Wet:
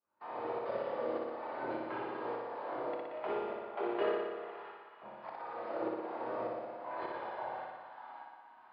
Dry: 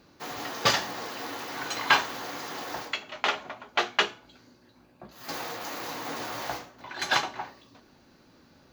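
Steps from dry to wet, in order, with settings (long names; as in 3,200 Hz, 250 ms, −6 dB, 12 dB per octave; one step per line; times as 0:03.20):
one scale factor per block 3 bits
downsampling to 11,025 Hz
noise gate −48 dBFS, range −13 dB
in parallel at +1 dB: downward compressor, threshold −38 dBFS, peak gain reduction 21 dB
on the sum: bass and treble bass +4 dB, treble −13 dB
coupled-rooms reverb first 0.34 s, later 4.3 s, from −18 dB, DRR −1.5 dB
multi-voice chorus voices 4, 0.32 Hz, delay 24 ms, depth 1.8 ms
shaped tremolo saw up 1.7 Hz, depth 90%
envelope filter 390–1,000 Hz, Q 2.2, down, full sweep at −27.5 dBFS
flutter between parallel walls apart 10.2 metres, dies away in 1.4 s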